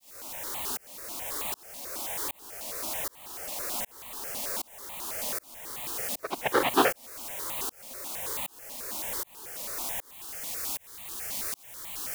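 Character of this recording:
a quantiser's noise floor 6 bits, dither triangular
tremolo saw up 1.3 Hz, depth 100%
notches that jump at a steady rate 9.2 Hz 390–1,500 Hz

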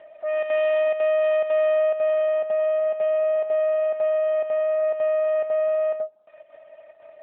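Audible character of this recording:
chopped level 2 Hz, depth 60%, duty 85%
AMR narrowband

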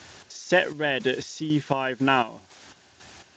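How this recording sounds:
a quantiser's noise floor 8 bits, dither triangular
chopped level 2 Hz, depth 65%, duty 45%
Speex

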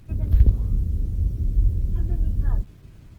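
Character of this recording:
a quantiser's noise floor 10 bits, dither none
Opus

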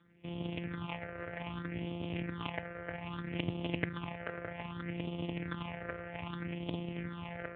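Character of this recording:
a buzz of ramps at a fixed pitch in blocks of 256 samples
phaser sweep stages 6, 0.63 Hz, lowest notch 240–1,600 Hz
AMR narrowband

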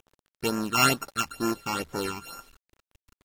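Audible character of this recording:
a buzz of ramps at a fixed pitch in blocks of 32 samples
phaser sweep stages 8, 2.2 Hz, lowest notch 480–3,700 Hz
a quantiser's noise floor 10 bits, dither none
AAC

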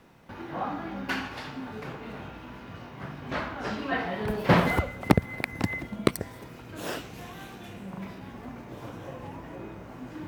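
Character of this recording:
background noise floor −45 dBFS
spectral slope −5.0 dB per octave

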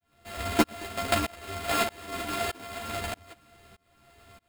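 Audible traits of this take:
a buzz of ramps at a fixed pitch in blocks of 64 samples
tremolo saw up 1.6 Hz, depth 100%
aliases and images of a low sample rate 5,900 Hz, jitter 0%
a shimmering, thickened sound

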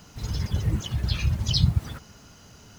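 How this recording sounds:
background noise floor −51 dBFS
spectral slope −5.0 dB per octave

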